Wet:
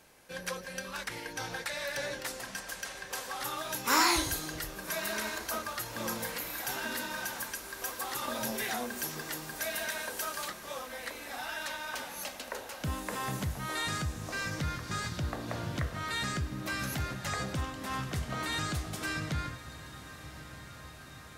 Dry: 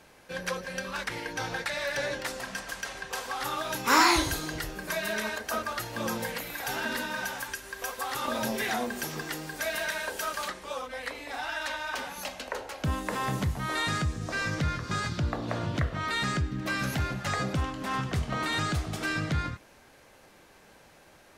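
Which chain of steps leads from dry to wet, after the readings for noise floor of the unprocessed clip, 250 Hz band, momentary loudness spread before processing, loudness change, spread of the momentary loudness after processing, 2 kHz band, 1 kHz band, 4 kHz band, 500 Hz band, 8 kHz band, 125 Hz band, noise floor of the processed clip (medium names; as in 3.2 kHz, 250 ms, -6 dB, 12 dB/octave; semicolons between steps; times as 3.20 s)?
-56 dBFS, -5.5 dB, 7 LU, -4.0 dB, 7 LU, -4.5 dB, -5.0 dB, -2.5 dB, -5.0 dB, +0.5 dB, -5.0 dB, -48 dBFS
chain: treble shelf 6.5 kHz +9.5 dB; on a send: echo that smears into a reverb 1194 ms, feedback 74%, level -15 dB; on the sum: trim -5.5 dB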